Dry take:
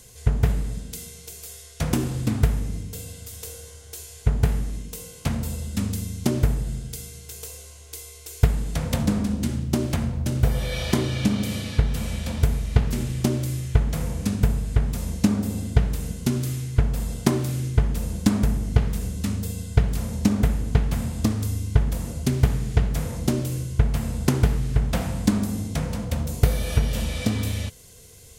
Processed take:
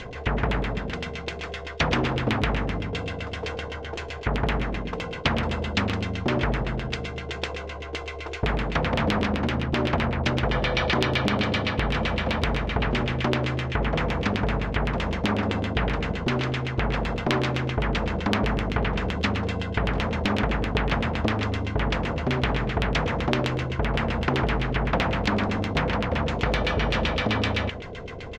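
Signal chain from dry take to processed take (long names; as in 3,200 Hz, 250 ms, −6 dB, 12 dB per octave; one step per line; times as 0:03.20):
low-pass filter 7,100 Hz 24 dB per octave
high-shelf EQ 5,400 Hz −7 dB
auto-filter low-pass saw down 7.8 Hz 380–3,000 Hz
single-tap delay 110 ms −19.5 dB
boost into a limiter +13 dB
every bin compressed towards the loudest bin 2 to 1
level −2.5 dB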